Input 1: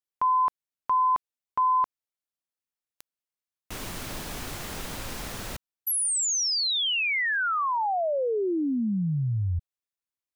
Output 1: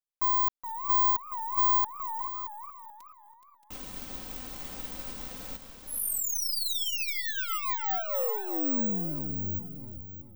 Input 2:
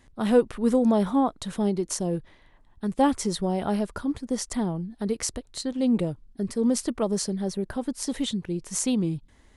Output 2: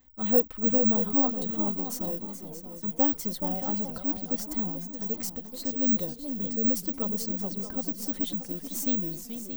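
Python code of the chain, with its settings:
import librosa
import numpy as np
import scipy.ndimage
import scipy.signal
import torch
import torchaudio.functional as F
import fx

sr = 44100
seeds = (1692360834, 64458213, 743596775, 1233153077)

y = np.where(x < 0.0, 10.0 ** (-3.0 / 20.0) * x, x)
y = fx.peak_eq(y, sr, hz=1800.0, db=-3.5, octaves=1.2)
y = y + 0.56 * np.pad(y, (int(3.9 * sr / 1000.0), 0))[:len(y)]
y = y + 10.0 ** (-11.0 / 20.0) * np.pad(y, (int(626 * sr / 1000.0), 0))[:len(y)]
y = (np.kron(scipy.signal.resample_poly(y, 1, 2), np.eye(2)[0]) * 2)[:len(y)]
y = fx.echo_warbled(y, sr, ms=428, feedback_pct=43, rate_hz=2.8, cents=208, wet_db=-9.5)
y = y * 10.0 ** (-7.5 / 20.0)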